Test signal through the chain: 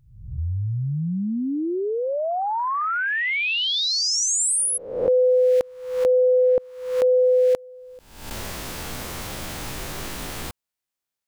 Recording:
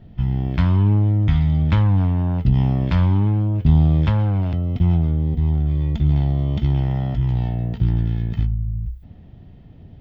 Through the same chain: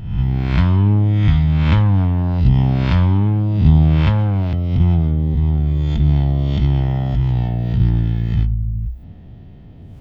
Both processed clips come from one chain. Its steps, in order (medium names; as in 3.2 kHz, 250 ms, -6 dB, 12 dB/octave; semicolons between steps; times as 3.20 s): reverse spectral sustain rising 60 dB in 0.74 s; trim +2 dB